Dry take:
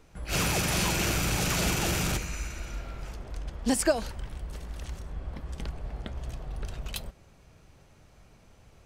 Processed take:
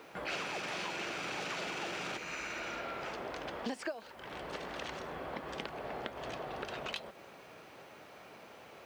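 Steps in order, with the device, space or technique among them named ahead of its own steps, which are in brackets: baby monitor (BPF 370–3500 Hz; compressor 10:1, threshold -47 dBFS, peak gain reduction 27 dB; white noise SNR 30 dB); gain +10.5 dB

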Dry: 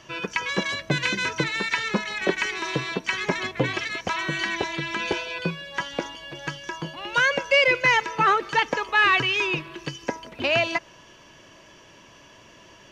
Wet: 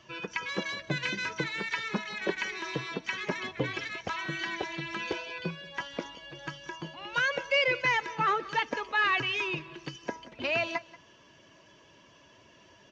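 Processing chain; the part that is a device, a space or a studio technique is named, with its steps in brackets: HPF 43 Hz; clip after many re-uploads (LPF 6700 Hz 24 dB/oct; bin magnitudes rounded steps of 15 dB); echo 0.183 s -20 dB; gain -7 dB

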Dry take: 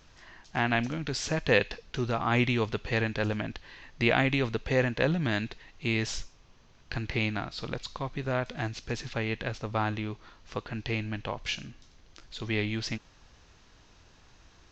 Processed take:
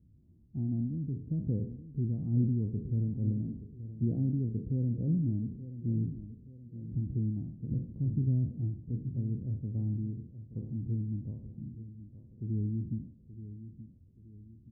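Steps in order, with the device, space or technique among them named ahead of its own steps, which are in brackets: spectral trails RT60 0.52 s; HPF 77 Hz; 7.71–8.5 tilt shelf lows +6.5 dB, about 640 Hz; the neighbour's flat through the wall (LPF 250 Hz 24 dB/oct; bell 93 Hz +4 dB 0.77 oct); feedback echo 0.876 s, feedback 43%, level -13 dB

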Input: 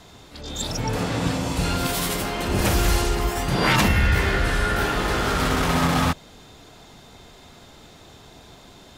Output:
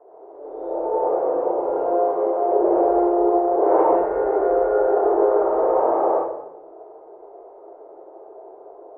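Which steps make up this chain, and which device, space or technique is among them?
next room (LPF 670 Hz 24 dB/oct; reverb RT60 0.85 s, pre-delay 69 ms, DRR -6.5 dB); elliptic high-pass 380 Hz, stop band 40 dB; gain +6.5 dB

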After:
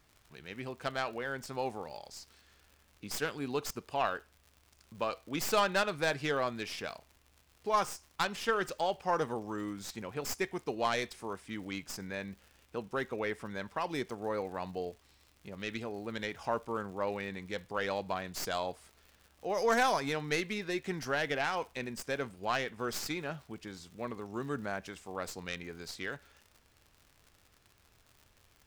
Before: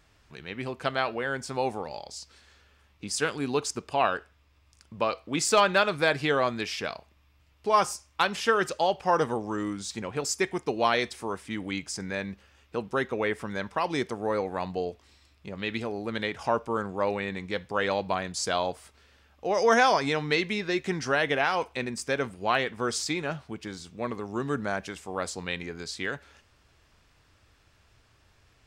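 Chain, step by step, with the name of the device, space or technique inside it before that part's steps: record under a worn stylus (tracing distortion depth 0.085 ms; crackle 110/s -40 dBFS; pink noise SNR 36 dB); gain -7 dB

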